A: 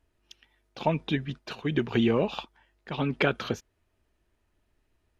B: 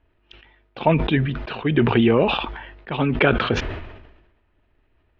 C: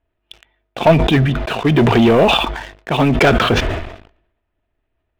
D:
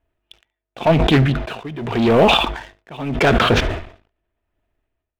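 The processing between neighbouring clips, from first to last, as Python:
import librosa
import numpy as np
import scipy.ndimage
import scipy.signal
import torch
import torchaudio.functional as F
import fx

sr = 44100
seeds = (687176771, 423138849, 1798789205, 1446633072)

y1 = scipy.signal.sosfilt(scipy.signal.butter(4, 3200.0, 'lowpass', fs=sr, output='sos'), x)
y1 = fx.peak_eq(y1, sr, hz=190.0, db=-3.5, octaves=0.43)
y1 = fx.sustainer(y1, sr, db_per_s=52.0)
y1 = F.gain(torch.from_numpy(y1), 7.5).numpy()
y2 = fx.leveller(y1, sr, passes=3)
y2 = fx.small_body(y2, sr, hz=(670.0, 3500.0), ring_ms=30, db=7)
y2 = F.gain(torch.from_numpy(y2), -2.5).numpy()
y3 = y2 * (1.0 - 0.87 / 2.0 + 0.87 / 2.0 * np.cos(2.0 * np.pi * 0.86 * (np.arange(len(y2)) / sr)))
y3 = y3 + 10.0 ** (-22.0 / 20.0) * np.pad(y3, (int(71 * sr / 1000.0), 0))[:len(y3)]
y3 = fx.doppler_dist(y3, sr, depth_ms=0.28)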